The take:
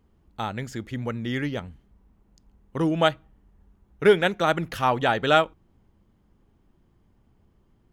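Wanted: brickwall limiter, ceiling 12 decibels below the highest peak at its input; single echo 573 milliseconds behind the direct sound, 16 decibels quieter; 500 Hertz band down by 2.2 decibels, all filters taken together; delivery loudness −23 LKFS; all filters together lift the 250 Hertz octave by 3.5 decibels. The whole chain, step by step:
parametric band 250 Hz +6.5 dB
parametric band 500 Hz −5 dB
brickwall limiter −17 dBFS
single-tap delay 573 ms −16 dB
level +5.5 dB

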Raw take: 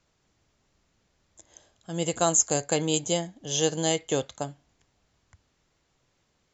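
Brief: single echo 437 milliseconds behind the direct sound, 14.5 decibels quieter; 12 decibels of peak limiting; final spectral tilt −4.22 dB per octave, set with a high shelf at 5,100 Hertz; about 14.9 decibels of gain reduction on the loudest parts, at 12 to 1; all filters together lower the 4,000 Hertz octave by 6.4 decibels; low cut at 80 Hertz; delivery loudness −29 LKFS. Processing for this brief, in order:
high-pass filter 80 Hz
parametric band 4,000 Hz −8 dB
high-shelf EQ 5,100 Hz −3 dB
downward compressor 12 to 1, threshold −35 dBFS
brickwall limiter −34 dBFS
single-tap delay 437 ms −14.5 dB
level +17.5 dB

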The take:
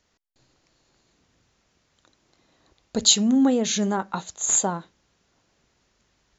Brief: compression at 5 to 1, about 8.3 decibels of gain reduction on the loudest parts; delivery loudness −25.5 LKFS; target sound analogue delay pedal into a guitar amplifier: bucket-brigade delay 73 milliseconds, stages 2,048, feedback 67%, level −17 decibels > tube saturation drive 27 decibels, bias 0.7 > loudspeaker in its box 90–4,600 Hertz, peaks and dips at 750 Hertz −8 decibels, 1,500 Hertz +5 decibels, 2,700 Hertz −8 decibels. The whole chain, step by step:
downward compressor 5 to 1, threshold −21 dBFS
bucket-brigade delay 73 ms, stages 2,048, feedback 67%, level −17 dB
tube saturation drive 27 dB, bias 0.7
loudspeaker in its box 90–4,600 Hz, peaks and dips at 750 Hz −8 dB, 1,500 Hz +5 dB, 2,700 Hz −8 dB
level +9 dB

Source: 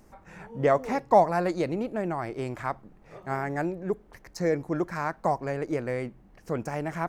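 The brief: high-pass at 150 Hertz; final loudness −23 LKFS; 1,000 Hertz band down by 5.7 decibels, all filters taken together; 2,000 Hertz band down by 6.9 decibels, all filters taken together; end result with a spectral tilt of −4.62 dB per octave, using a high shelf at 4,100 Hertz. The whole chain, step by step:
high-pass filter 150 Hz
parametric band 1,000 Hz −7 dB
parametric band 2,000 Hz −4.5 dB
high-shelf EQ 4,100 Hz −8.5 dB
level +8.5 dB

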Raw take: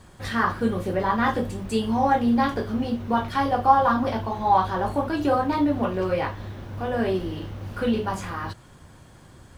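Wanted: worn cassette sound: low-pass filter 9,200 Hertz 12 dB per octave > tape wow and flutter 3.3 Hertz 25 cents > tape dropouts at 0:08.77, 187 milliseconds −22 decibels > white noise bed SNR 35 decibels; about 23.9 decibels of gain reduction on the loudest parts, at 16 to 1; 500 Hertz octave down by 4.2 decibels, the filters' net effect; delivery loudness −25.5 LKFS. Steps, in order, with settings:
parametric band 500 Hz −5 dB
downward compressor 16 to 1, threshold −36 dBFS
low-pass filter 9,200 Hz 12 dB per octave
tape wow and flutter 3.3 Hz 25 cents
tape dropouts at 0:08.77, 187 ms −22 dB
white noise bed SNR 35 dB
level +15 dB

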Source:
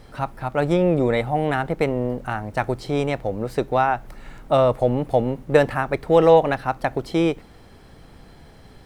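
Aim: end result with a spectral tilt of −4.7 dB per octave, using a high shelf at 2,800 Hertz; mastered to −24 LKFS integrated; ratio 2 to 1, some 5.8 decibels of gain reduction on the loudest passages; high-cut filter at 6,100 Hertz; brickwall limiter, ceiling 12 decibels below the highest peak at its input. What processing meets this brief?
low-pass filter 6,100 Hz
high-shelf EQ 2,800 Hz −5 dB
downward compressor 2 to 1, threshold −20 dBFS
level +5.5 dB
brickwall limiter −13 dBFS

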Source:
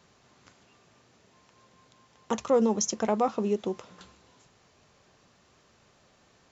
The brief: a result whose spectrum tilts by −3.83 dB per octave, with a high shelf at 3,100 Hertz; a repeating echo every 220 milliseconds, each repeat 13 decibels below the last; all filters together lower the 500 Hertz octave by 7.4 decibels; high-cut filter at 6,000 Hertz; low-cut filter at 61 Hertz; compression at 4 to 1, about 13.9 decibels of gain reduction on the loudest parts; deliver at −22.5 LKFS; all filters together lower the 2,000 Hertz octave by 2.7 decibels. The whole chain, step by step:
high-pass filter 61 Hz
low-pass filter 6,000 Hz
parametric band 500 Hz −8.5 dB
parametric band 2,000 Hz −5 dB
high-shelf EQ 3,100 Hz +5.5 dB
downward compressor 4 to 1, threshold −41 dBFS
repeating echo 220 ms, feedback 22%, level −13 dB
level +21 dB

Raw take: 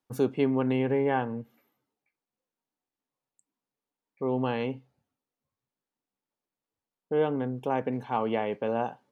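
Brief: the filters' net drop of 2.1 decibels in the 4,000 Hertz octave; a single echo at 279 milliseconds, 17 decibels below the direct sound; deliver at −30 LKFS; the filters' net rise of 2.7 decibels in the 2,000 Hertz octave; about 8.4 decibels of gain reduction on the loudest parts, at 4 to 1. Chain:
parametric band 2,000 Hz +5 dB
parametric band 4,000 Hz −6.5 dB
downward compressor 4 to 1, threshold −30 dBFS
single-tap delay 279 ms −17 dB
level +5 dB

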